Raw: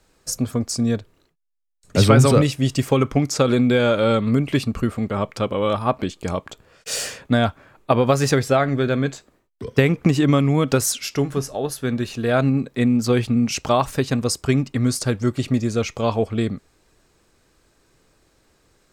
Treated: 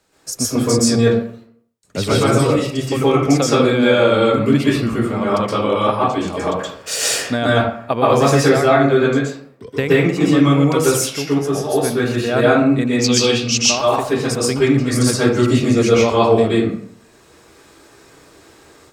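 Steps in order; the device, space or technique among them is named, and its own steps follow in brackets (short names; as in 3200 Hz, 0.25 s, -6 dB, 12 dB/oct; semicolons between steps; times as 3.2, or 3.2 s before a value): 12.87–13.6 band shelf 4400 Hz +14 dB; far laptop microphone (reverb RT60 0.60 s, pre-delay 0.116 s, DRR -7.5 dB; HPF 170 Hz 6 dB/oct; AGC gain up to 9 dB); gain -1 dB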